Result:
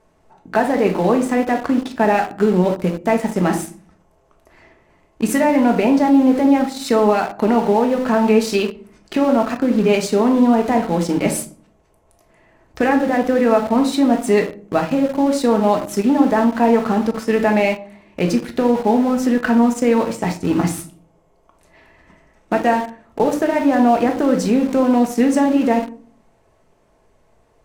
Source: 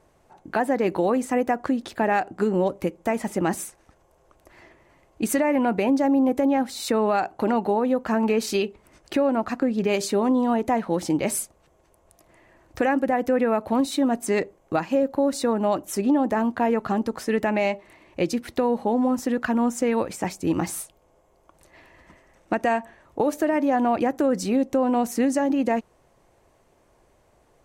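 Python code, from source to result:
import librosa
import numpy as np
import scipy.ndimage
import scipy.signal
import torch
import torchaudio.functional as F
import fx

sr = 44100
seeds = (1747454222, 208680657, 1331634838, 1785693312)

p1 = fx.room_shoebox(x, sr, seeds[0], volume_m3=480.0, walls='furnished', distance_m=1.5)
p2 = np.where(np.abs(p1) >= 10.0 ** (-25.5 / 20.0), p1, 0.0)
p3 = p1 + (p2 * librosa.db_to_amplitude(-4.0))
y = fx.high_shelf(p3, sr, hz=9700.0, db=-6.5)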